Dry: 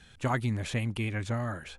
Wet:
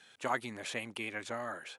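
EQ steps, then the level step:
high-pass filter 400 Hz 12 dB per octave
−1.5 dB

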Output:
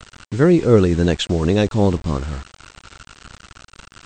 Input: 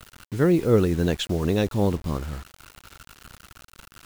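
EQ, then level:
linear-phase brick-wall low-pass 8,600 Hz
+6.0 dB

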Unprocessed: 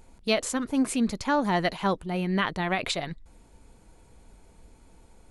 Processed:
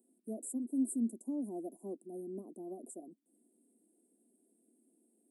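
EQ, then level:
Chebyshev high-pass filter 230 Hz, order 5
Chebyshev band-stop filter 720–8,100 Hz, order 5
flat-topped bell 620 Hz −14 dB 1.2 octaves
−6.0 dB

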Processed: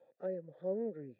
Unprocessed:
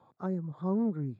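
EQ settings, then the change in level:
formant filter e
+8.5 dB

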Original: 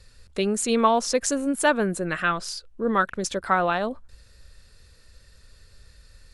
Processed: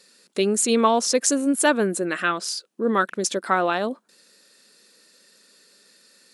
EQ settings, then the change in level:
linear-phase brick-wall high-pass 170 Hz
parametric band 330 Hz +6 dB 1.1 octaves
high-shelf EQ 3,400 Hz +8 dB
−1.0 dB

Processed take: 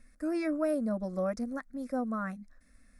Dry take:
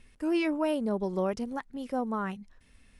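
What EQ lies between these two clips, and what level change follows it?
phaser with its sweep stopped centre 600 Hz, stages 8
0.0 dB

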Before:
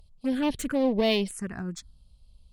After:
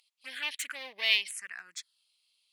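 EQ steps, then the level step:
high-pass with resonance 2,100 Hz, resonance Q 2.3
0.0 dB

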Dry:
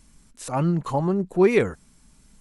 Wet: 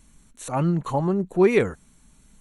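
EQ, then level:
Butterworth band-reject 5,000 Hz, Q 5.2
0.0 dB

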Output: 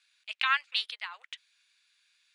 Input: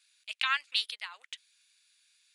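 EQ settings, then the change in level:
high-pass filter 640 Hz 12 dB per octave
high-frequency loss of the air 53 metres
high-shelf EQ 2,700 Hz −8.5 dB
+6.0 dB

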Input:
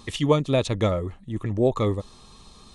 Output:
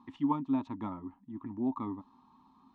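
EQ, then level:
pair of resonant band-passes 500 Hz, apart 1.8 octaves
high-frequency loss of the air 58 metres
notch filter 620 Hz, Q 19
0.0 dB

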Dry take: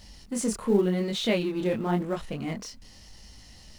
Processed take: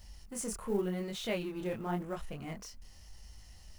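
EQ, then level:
octave-band graphic EQ 125/250/500/1,000/2,000/4,000/8,000 Hz −5/−12/−6/−4/−5/−10/−4 dB
0.0 dB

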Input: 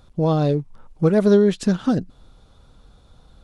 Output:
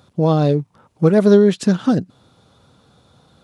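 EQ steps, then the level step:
high-pass filter 96 Hz 24 dB per octave
+3.5 dB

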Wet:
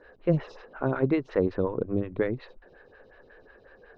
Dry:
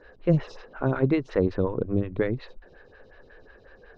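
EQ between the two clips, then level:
low-pass filter 2,800 Hz 6 dB per octave
low-shelf EQ 150 Hz −8 dB
0.0 dB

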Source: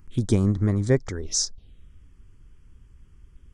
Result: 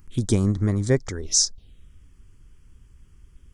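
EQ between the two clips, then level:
high-shelf EQ 4,000 Hz +7.5 dB
0.0 dB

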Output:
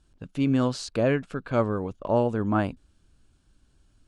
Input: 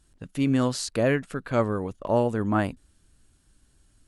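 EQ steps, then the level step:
high-frequency loss of the air 76 metres
parametric band 1,900 Hz −7.5 dB 0.21 octaves
0.0 dB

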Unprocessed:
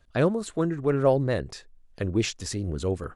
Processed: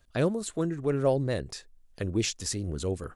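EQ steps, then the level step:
high-shelf EQ 5,300 Hz +9 dB
dynamic equaliser 1,200 Hz, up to −4 dB, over −38 dBFS, Q 0.95
−3.0 dB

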